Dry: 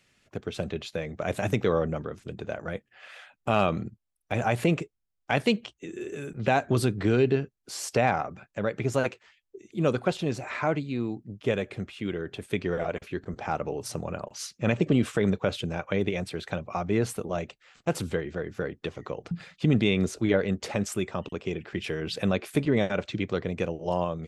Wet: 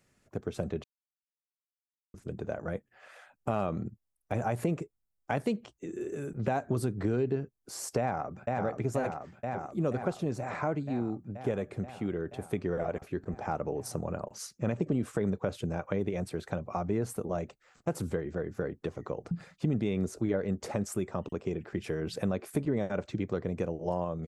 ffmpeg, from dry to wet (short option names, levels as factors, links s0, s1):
-filter_complex "[0:a]asplit=2[s0][s1];[s1]afade=t=in:st=7.99:d=0.01,afade=t=out:st=8.62:d=0.01,aecho=0:1:480|960|1440|1920|2400|2880|3360|3840|4320|4800|5280|5760:0.595662|0.446747|0.33506|0.251295|0.188471|0.141353|0.106015|0.0795113|0.0596335|0.0447251|0.0335438|0.0251579[s2];[s0][s2]amix=inputs=2:normalize=0,asplit=3[s3][s4][s5];[s3]atrim=end=0.84,asetpts=PTS-STARTPTS,afade=t=out:st=0.836:d=0.004:c=hsin[s6];[s4]atrim=start=0.84:end=2.14,asetpts=PTS-STARTPTS,volume=0[s7];[s5]atrim=start=2.14,asetpts=PTS-STARTPTS,afade=t=in:d=0.004:c=hsin[s8];[s6][s7][s8]concat=n=3:v=0:a=1,equalizer=f=3100:w=0.82:g=-12.5,acompressor=threshold=0.0398:ratio=2.5"